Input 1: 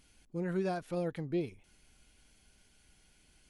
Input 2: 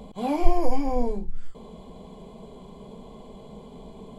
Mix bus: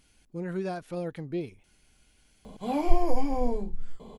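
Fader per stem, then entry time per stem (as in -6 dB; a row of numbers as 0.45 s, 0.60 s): +1.0 dB, -2.5 dB; 0.00 s, 2.45 s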